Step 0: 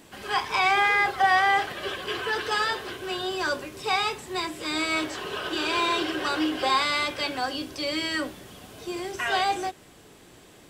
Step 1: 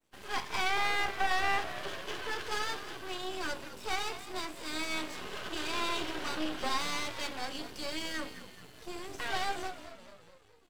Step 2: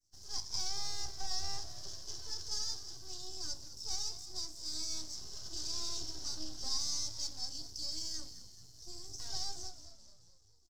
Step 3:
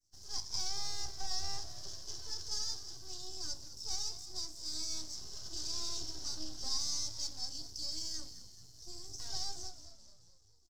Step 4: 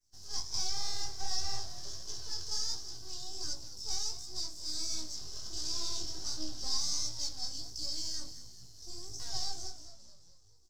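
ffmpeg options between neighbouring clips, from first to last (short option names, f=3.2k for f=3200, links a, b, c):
-filter_complex "[0:a]agate=range=-33dB:threshold=-41dB:ratio=3:detection=peak,asplit=7[a][b][c][d][e][f][g];[b]adelay=215,afreqshift=-66,volume=-13dB[h];[c]adelay=430,afreqshift=-132,volume=-17.9dB[i];[d]adelay=645,afreqshift=-198,volume=-22.8dB[j];[e]adelay=860,afreqshift=-264,volume=-27.6dB[k];[f]adelay=1075,afreqshift=-330,volume=-32.5dB[l];[g]adelay=1290,afreqshift=-396,volume=-37.4dB[m];[a][h][i][j][k][l][m]amix=inputs=7:normalize=0,aeval=exprs='max(val(0),0)':c=same,volume=-5dB"
-af "firequalizer=gain_entry='entry(110,0);entry(190,-15);entry(340,-14);entry(490,-22);entry(700,-16);entry(1200,-22);entry(2500,-28);entry(5300,12);entry(9100,-7)':delay=0.05:min_phase=1"
-af anull
-af "flanger=delay=16:depth=7.6:speed=1.4,volume=5.5dB"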